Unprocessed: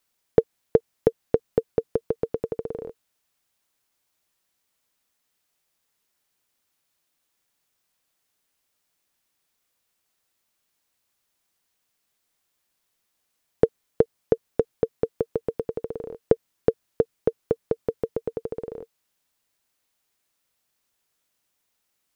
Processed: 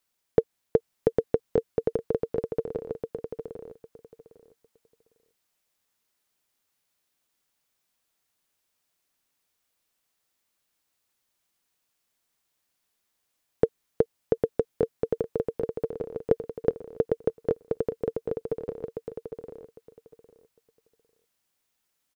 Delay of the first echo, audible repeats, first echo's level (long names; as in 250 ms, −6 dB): 804 ms, 3, −4.0 dB